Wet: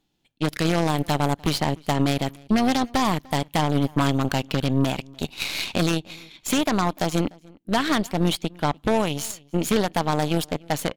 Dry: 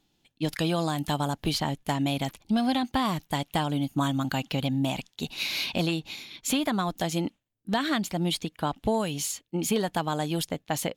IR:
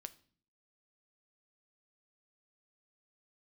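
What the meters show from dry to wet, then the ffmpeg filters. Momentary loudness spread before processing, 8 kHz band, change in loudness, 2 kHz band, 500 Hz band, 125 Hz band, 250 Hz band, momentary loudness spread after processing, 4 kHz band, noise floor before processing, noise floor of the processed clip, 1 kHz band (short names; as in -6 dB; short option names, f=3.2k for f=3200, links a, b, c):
5 LU, +2.0 dB, +4.5 dB, +4.5 dB, +5.5 dB, +5.5 dB, +4.5 dB, 6 LU, +2.5 dB, -75 dBFS, -61 dBFS, +5.0 dB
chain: -filter_complex "[0:a]asplit=2[a][b];[1:a]atrim=start_sample=2205,lowpass=3.9k[c];[b][c]afir=irnorm=-1:irlink=0,volume=-6dB[d];[a][d]amix=inputs=2:normalize=0,aeval=exprs='0.251*(cos(1*acos(clip(val(0)/0.251,-1,1)))-cos(1*PI/2))+0.0355*(cos(4*acos(clip(val(0)/0.251,-1,1)))-cos(4*PI/2))+0.112*(cos(5*acos(clip(val(0)/0.251,-1,1)))-cos(5*PI/2))+0.0891*(cos(7*acos(clip(val(0)/0.251,-1,1)))-cos(7*PI/2))+0.01*(cos(8*acos(clip(val(0)/0.251,-1,1)))-cos(8*PI/2))':c=same,tremolo=f=130:d=0.261,asplit=2[e][f];[f]adelay=297.4,volume=-25dB,highshelf=f=4k:g=-6.69[g];[e][g]amix=inputs=2:normalize=0"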